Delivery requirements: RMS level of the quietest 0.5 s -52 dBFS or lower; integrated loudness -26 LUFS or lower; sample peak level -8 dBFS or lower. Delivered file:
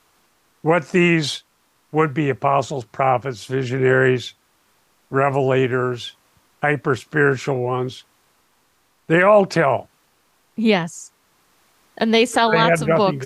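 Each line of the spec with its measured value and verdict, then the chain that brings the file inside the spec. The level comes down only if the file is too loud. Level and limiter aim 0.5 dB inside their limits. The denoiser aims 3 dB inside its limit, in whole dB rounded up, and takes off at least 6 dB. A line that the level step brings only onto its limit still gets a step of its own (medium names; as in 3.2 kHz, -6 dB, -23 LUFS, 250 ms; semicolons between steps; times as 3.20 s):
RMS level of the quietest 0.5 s -62 dBFS: pass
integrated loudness -19.0 LUFS: fail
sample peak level -4.5 dBFS: fail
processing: trim -7.5 dB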